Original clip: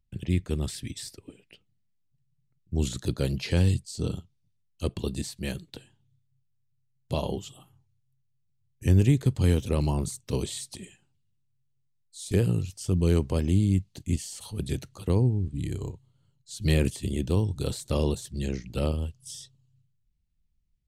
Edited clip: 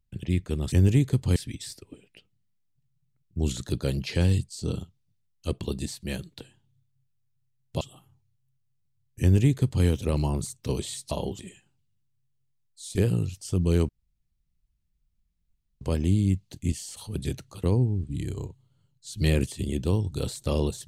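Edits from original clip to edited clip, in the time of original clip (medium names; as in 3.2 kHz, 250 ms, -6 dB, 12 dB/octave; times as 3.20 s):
7.17–7.45 s: move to 10.75 s
8.85–9.49 s: copy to 0.72 s
13.25 s: insert room tone 1.92 s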